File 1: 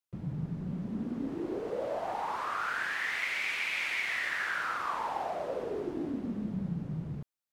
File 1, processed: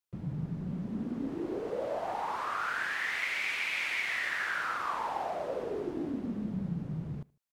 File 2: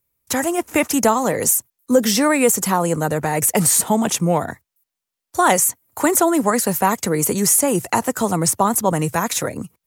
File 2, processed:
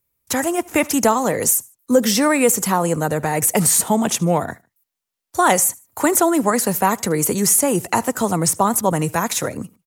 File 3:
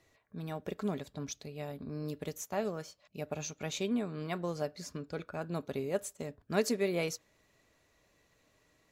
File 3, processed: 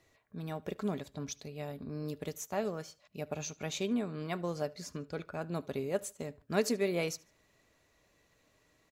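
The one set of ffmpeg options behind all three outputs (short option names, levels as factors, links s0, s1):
-af "aecho=1:1:75|150:0.0631|0.0227"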